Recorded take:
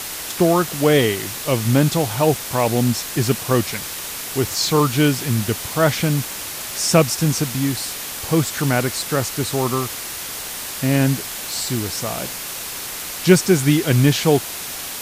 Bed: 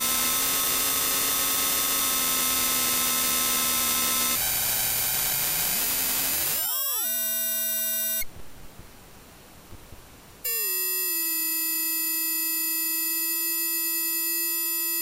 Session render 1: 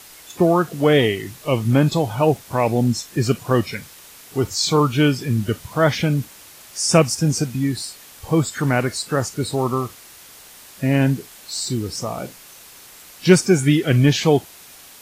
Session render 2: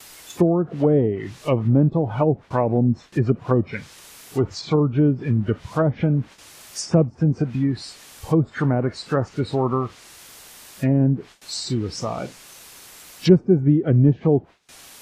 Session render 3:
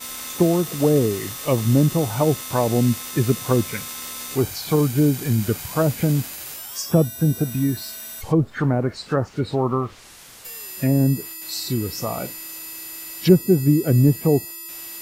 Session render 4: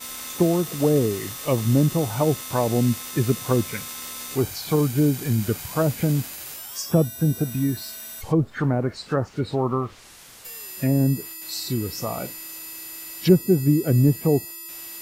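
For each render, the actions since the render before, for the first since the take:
noise reduction from a noise print 14 dB
treble cut that deepens with the level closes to 460 Hz, closed at −13 dBFS; noise gate with hold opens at −36 dBFS
mix in bed −9 dB
level −2 dB

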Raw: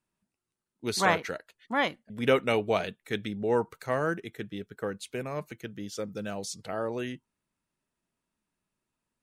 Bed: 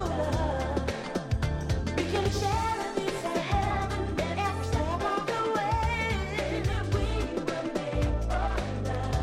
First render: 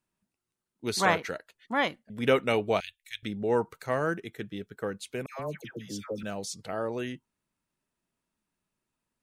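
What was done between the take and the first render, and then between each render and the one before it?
0:02.80–0:03.23: inverse Chebyshev band-stop filter 190–660 Hz, stop band 70 dB
0:05.26–0:06.23: all-pass dispersion lows, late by 134 ms, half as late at 1,100 Hz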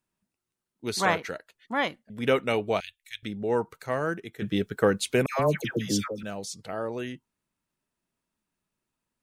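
0:04.42–0:06.08: clip gain +11.5 dB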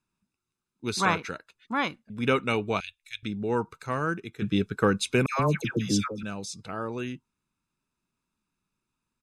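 low-pass filter 8,900 Hz 12 dB per octave
comb filter 0.8 ms, depth 52%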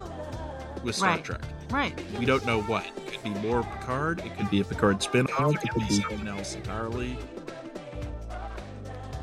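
mix in bed −8.5 dB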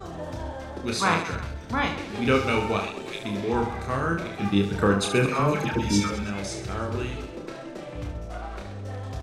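reverse bouncing-ball delay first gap 30 ms, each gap 1.4×, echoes 5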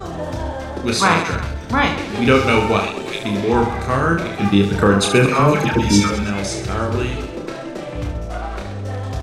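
level +9 dB
brickwall limiter −2 dBFS, peak gain reduction 3 dB

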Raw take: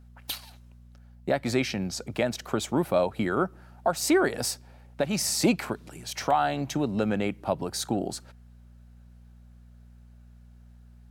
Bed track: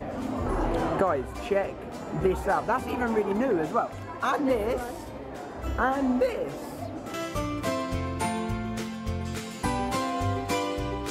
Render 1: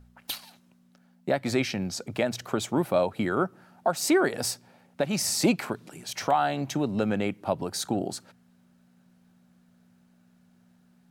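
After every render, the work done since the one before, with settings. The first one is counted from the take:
hum removal 60 Hz, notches 2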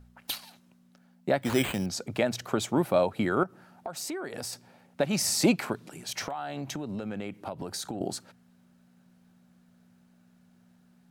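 0:01.42–0:01.86: bad sample-rate conversion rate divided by 8×, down none, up hold
0:03.43–0:04.53: downward compressor, threshold −33 dBFS
0:06.23–0:08.01: downward compressor 8 to 1, threshold −31 dBFS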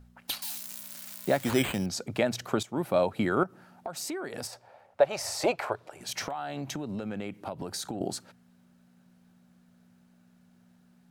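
0:00.42–0:01.51: spike at every zero crossing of −29 dBFS
0:02.63–0:03.16: fade in equal-power, from −16 dB
0:04.47–0:06.01: drawn EQ curve 100 Hz 0 dB, 200 Hz −21 dB, 600 Hz +8 dB, 2,500 Hz −3 dB, 12,000 Hz −10 dB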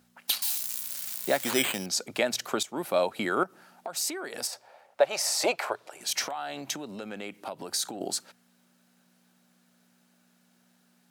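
Bessel high-pass filter 310 Hz, order 2
high-shelf EQ 2,400 Hz +8 dB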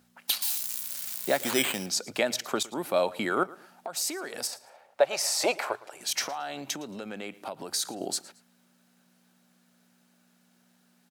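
repeating echo 112 ms, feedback 29%, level −20.5 dB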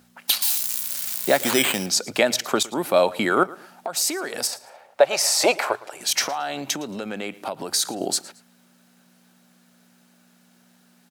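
level +7.5 dB
brickwall limiter −3 dBFS, peak gain reduction 2.5 dB

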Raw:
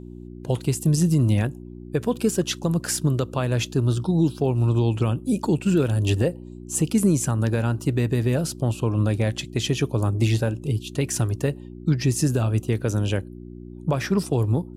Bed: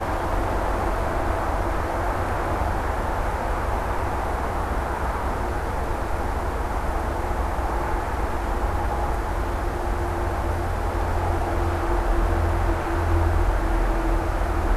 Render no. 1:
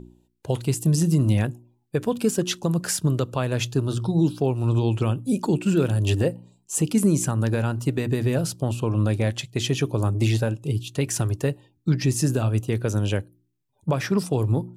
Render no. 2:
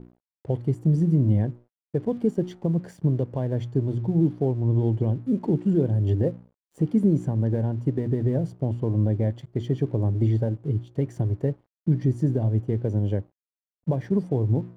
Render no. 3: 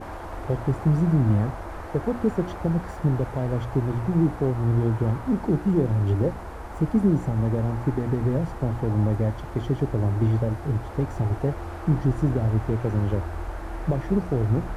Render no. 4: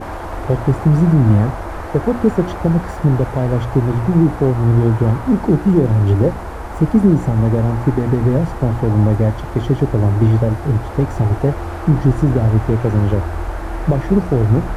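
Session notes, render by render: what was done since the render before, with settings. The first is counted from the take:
hum removal 60 Hz, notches 6
moving average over 34 samples; dead-zone distortion −53 dBFS
mix in bed −11 dB
level +9 dB; brickwall limiter −3 dBFS, peak gain reduction 2 dB

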